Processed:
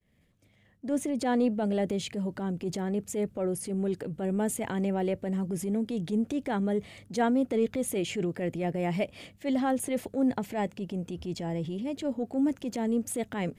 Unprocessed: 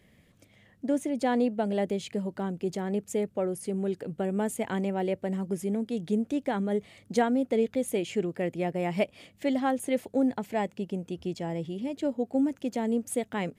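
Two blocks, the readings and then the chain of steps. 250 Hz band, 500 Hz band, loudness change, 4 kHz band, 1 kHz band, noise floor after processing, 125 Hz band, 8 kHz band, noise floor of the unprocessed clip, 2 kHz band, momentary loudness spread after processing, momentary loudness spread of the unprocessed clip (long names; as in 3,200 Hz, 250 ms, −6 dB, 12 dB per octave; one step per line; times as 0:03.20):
0.0 dB, −2.0 dB, −0.5 dB, +1.0 dB, −1.5 dB, −64 dBFS, +1.5 dB, +3.0 dB, −62 dBFS, −1.5 dB, 6 LU, 7 LU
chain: downward expander −53 dBFS
low-shelf EQ 100 Hz +8 dB
transient designer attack −7 dB, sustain +4 dB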